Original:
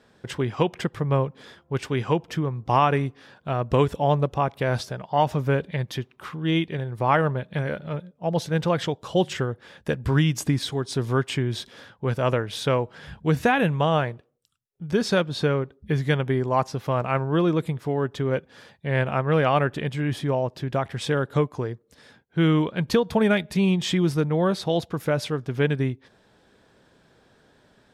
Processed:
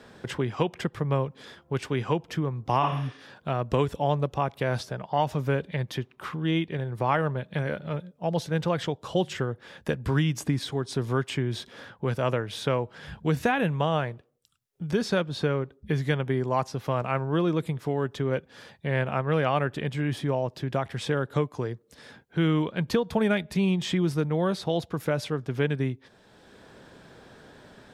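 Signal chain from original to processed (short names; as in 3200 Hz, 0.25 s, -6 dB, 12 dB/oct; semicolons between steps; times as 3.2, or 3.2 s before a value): spectral repair 2.85–3.15, 260–9600 Hz both; three-band squash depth 40%; gain -3.5 dB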